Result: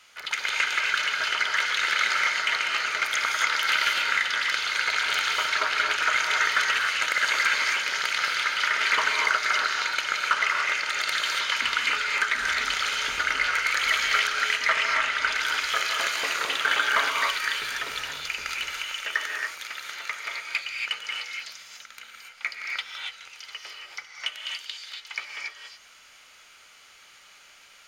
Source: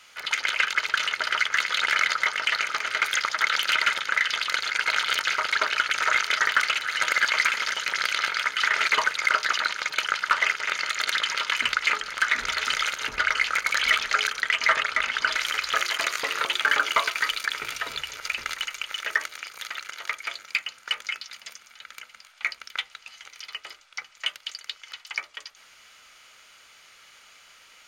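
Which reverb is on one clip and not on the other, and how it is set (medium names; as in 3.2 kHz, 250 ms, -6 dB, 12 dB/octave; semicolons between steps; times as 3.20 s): gated-style reverb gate 310 ms rising, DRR -0.5 dB; trim -3 dB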